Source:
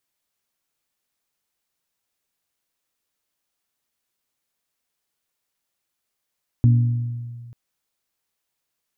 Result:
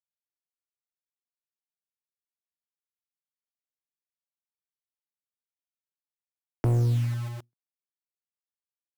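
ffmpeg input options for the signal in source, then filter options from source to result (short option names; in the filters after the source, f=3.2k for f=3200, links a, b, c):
-f lavfi -i "aevalsrc='0.316*pow(10,-3*t/1.85)*sin(2*PI*119*t)+0.1*pow(10,-3*t/1.139)*sin(2*PI*238*t)+0.0316*pow(10,-3*t/1.002)*sin(2*PI*285.6*t)':d=0.89:s=44100"
-filter_complex "[0:a]agate=range=-32dB:threshold=-37dB:ratio=16:detection=peak,acrossover=split=170|190[a][b][c];[a]acrusher=bits=6:mix=0:aa=0.000001[d];[d][b][c]amix=inputs=3:normalize=0,volume=20.5dB,asoftclip=hard,volume=-20.5dB"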